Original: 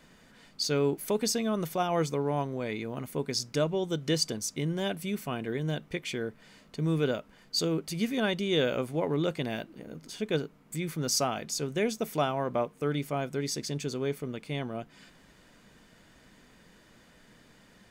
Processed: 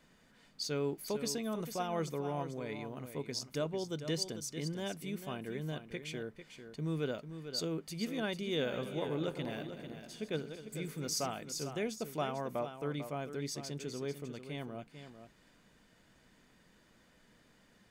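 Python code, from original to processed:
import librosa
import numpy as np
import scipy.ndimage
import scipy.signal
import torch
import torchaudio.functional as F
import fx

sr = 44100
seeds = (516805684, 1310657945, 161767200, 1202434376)

y = fx.reverse_delay_fb(x, sr, ms=123, feedback_pct=60, wet_db=-10.5, at=(8.59, 11.31))
y = y + 10.0 ** (-10.0 / 20.0) * np.pad(y, (int(446 * sr / 1000.0), 0))[:len(y)]
y = y * librosa.db_to_amplitude(-8.0)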